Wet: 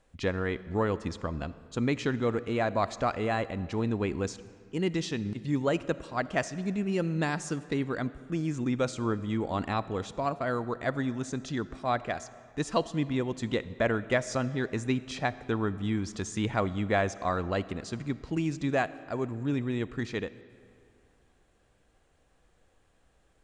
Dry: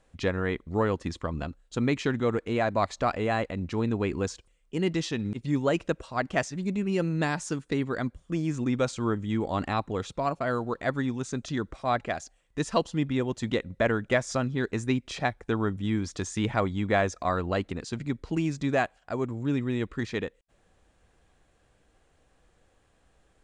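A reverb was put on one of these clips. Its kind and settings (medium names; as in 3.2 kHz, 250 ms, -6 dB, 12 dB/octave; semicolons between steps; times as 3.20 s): algorithmic reverb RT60 2.4 s, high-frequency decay 0.7×, pre-delay 15 ms, DRR 16 dB; trim -2 dB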